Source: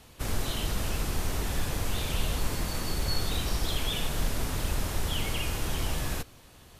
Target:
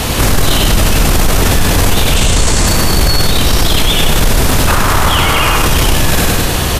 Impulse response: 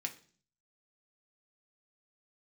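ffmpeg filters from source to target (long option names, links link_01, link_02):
-filter_complex "[0:a]asettb=1/sr,asplit=3[link_01][link_02][link_03];[link_01]atrim=end=4.674[link_04];[link_02]atrim=start=4.67:end=5.57,asetpts=PTS-STARTPTS,afade=type=in:duration=0.004:curve=qsin,afade=type=out:start_time=0.896:duration=0.004:curve=qsin,equalizer=frequency=1200:width=1.1:gain=12[link_05];[link_03]atrim=start=5.566[link_06];[link_04][link_05]acrossfade=duration=0.004:curve1=hsin:curve2=qsin[link_07];[link_07][link_06]acrossfade=duration=0.004:curve1=qsin:curve2=hsin,acontrast=62,asettb=1/sr,asplit=3[link_08][link_09][link_10];[link_08]atrim=end=2.164[link_11];[link_09]atrim=start=2.16:end=2.67,asetpts=PTS-STARTPTS,afade=type=in:duration=0.004:curve=qsin,afade=type=out:start_time=0.506:duration=0.004:curve=qsin,lowpass=frequency=7800:width_type=q:width=2.5[link_12];[link_10]atrim=start=2.666[link_13];[link_11][link_12]acrossfade=duration=0.004:curve1=hsin:curve2=qsin[link_14];[link_14][link_13]acrossfade=duration=0.004:curve1=qsin:curve2=hsin,aecho=1:1:98|196|294|392:0.562|0.191|0.065|0.0221,alimiter=level_in=32.5dB:limit=-1dB:release=50:level=0:latency=1,volume=-1dB"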